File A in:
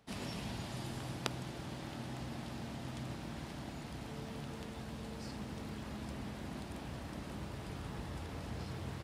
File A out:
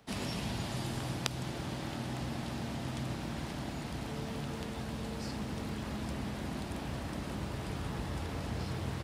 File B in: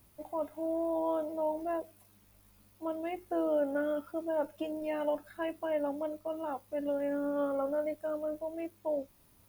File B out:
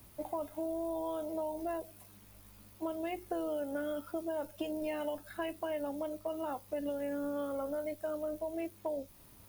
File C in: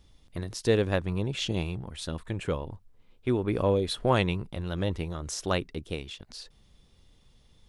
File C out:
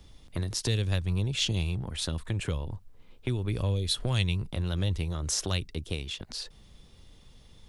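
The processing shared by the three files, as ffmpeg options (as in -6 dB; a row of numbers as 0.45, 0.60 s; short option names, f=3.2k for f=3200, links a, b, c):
-filter_complex "[0:a]acrossover=split=130|3000[a][b][c];[b]acompressor=threshold=-40dB:ratio=10[d];[a][d][c]amix=inputs=3:normalize=0,volume=6dB"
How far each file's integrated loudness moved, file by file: +5.5, -3.5, -1.0 LU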